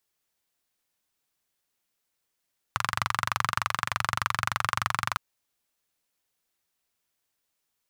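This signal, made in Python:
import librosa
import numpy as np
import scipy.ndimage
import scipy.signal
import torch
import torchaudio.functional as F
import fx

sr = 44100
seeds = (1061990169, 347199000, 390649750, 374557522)

y = fx.engine_single(sr, seeds[0], length_s=2.41, rpm=2800, resonances_hz=(110.0, 1200.0))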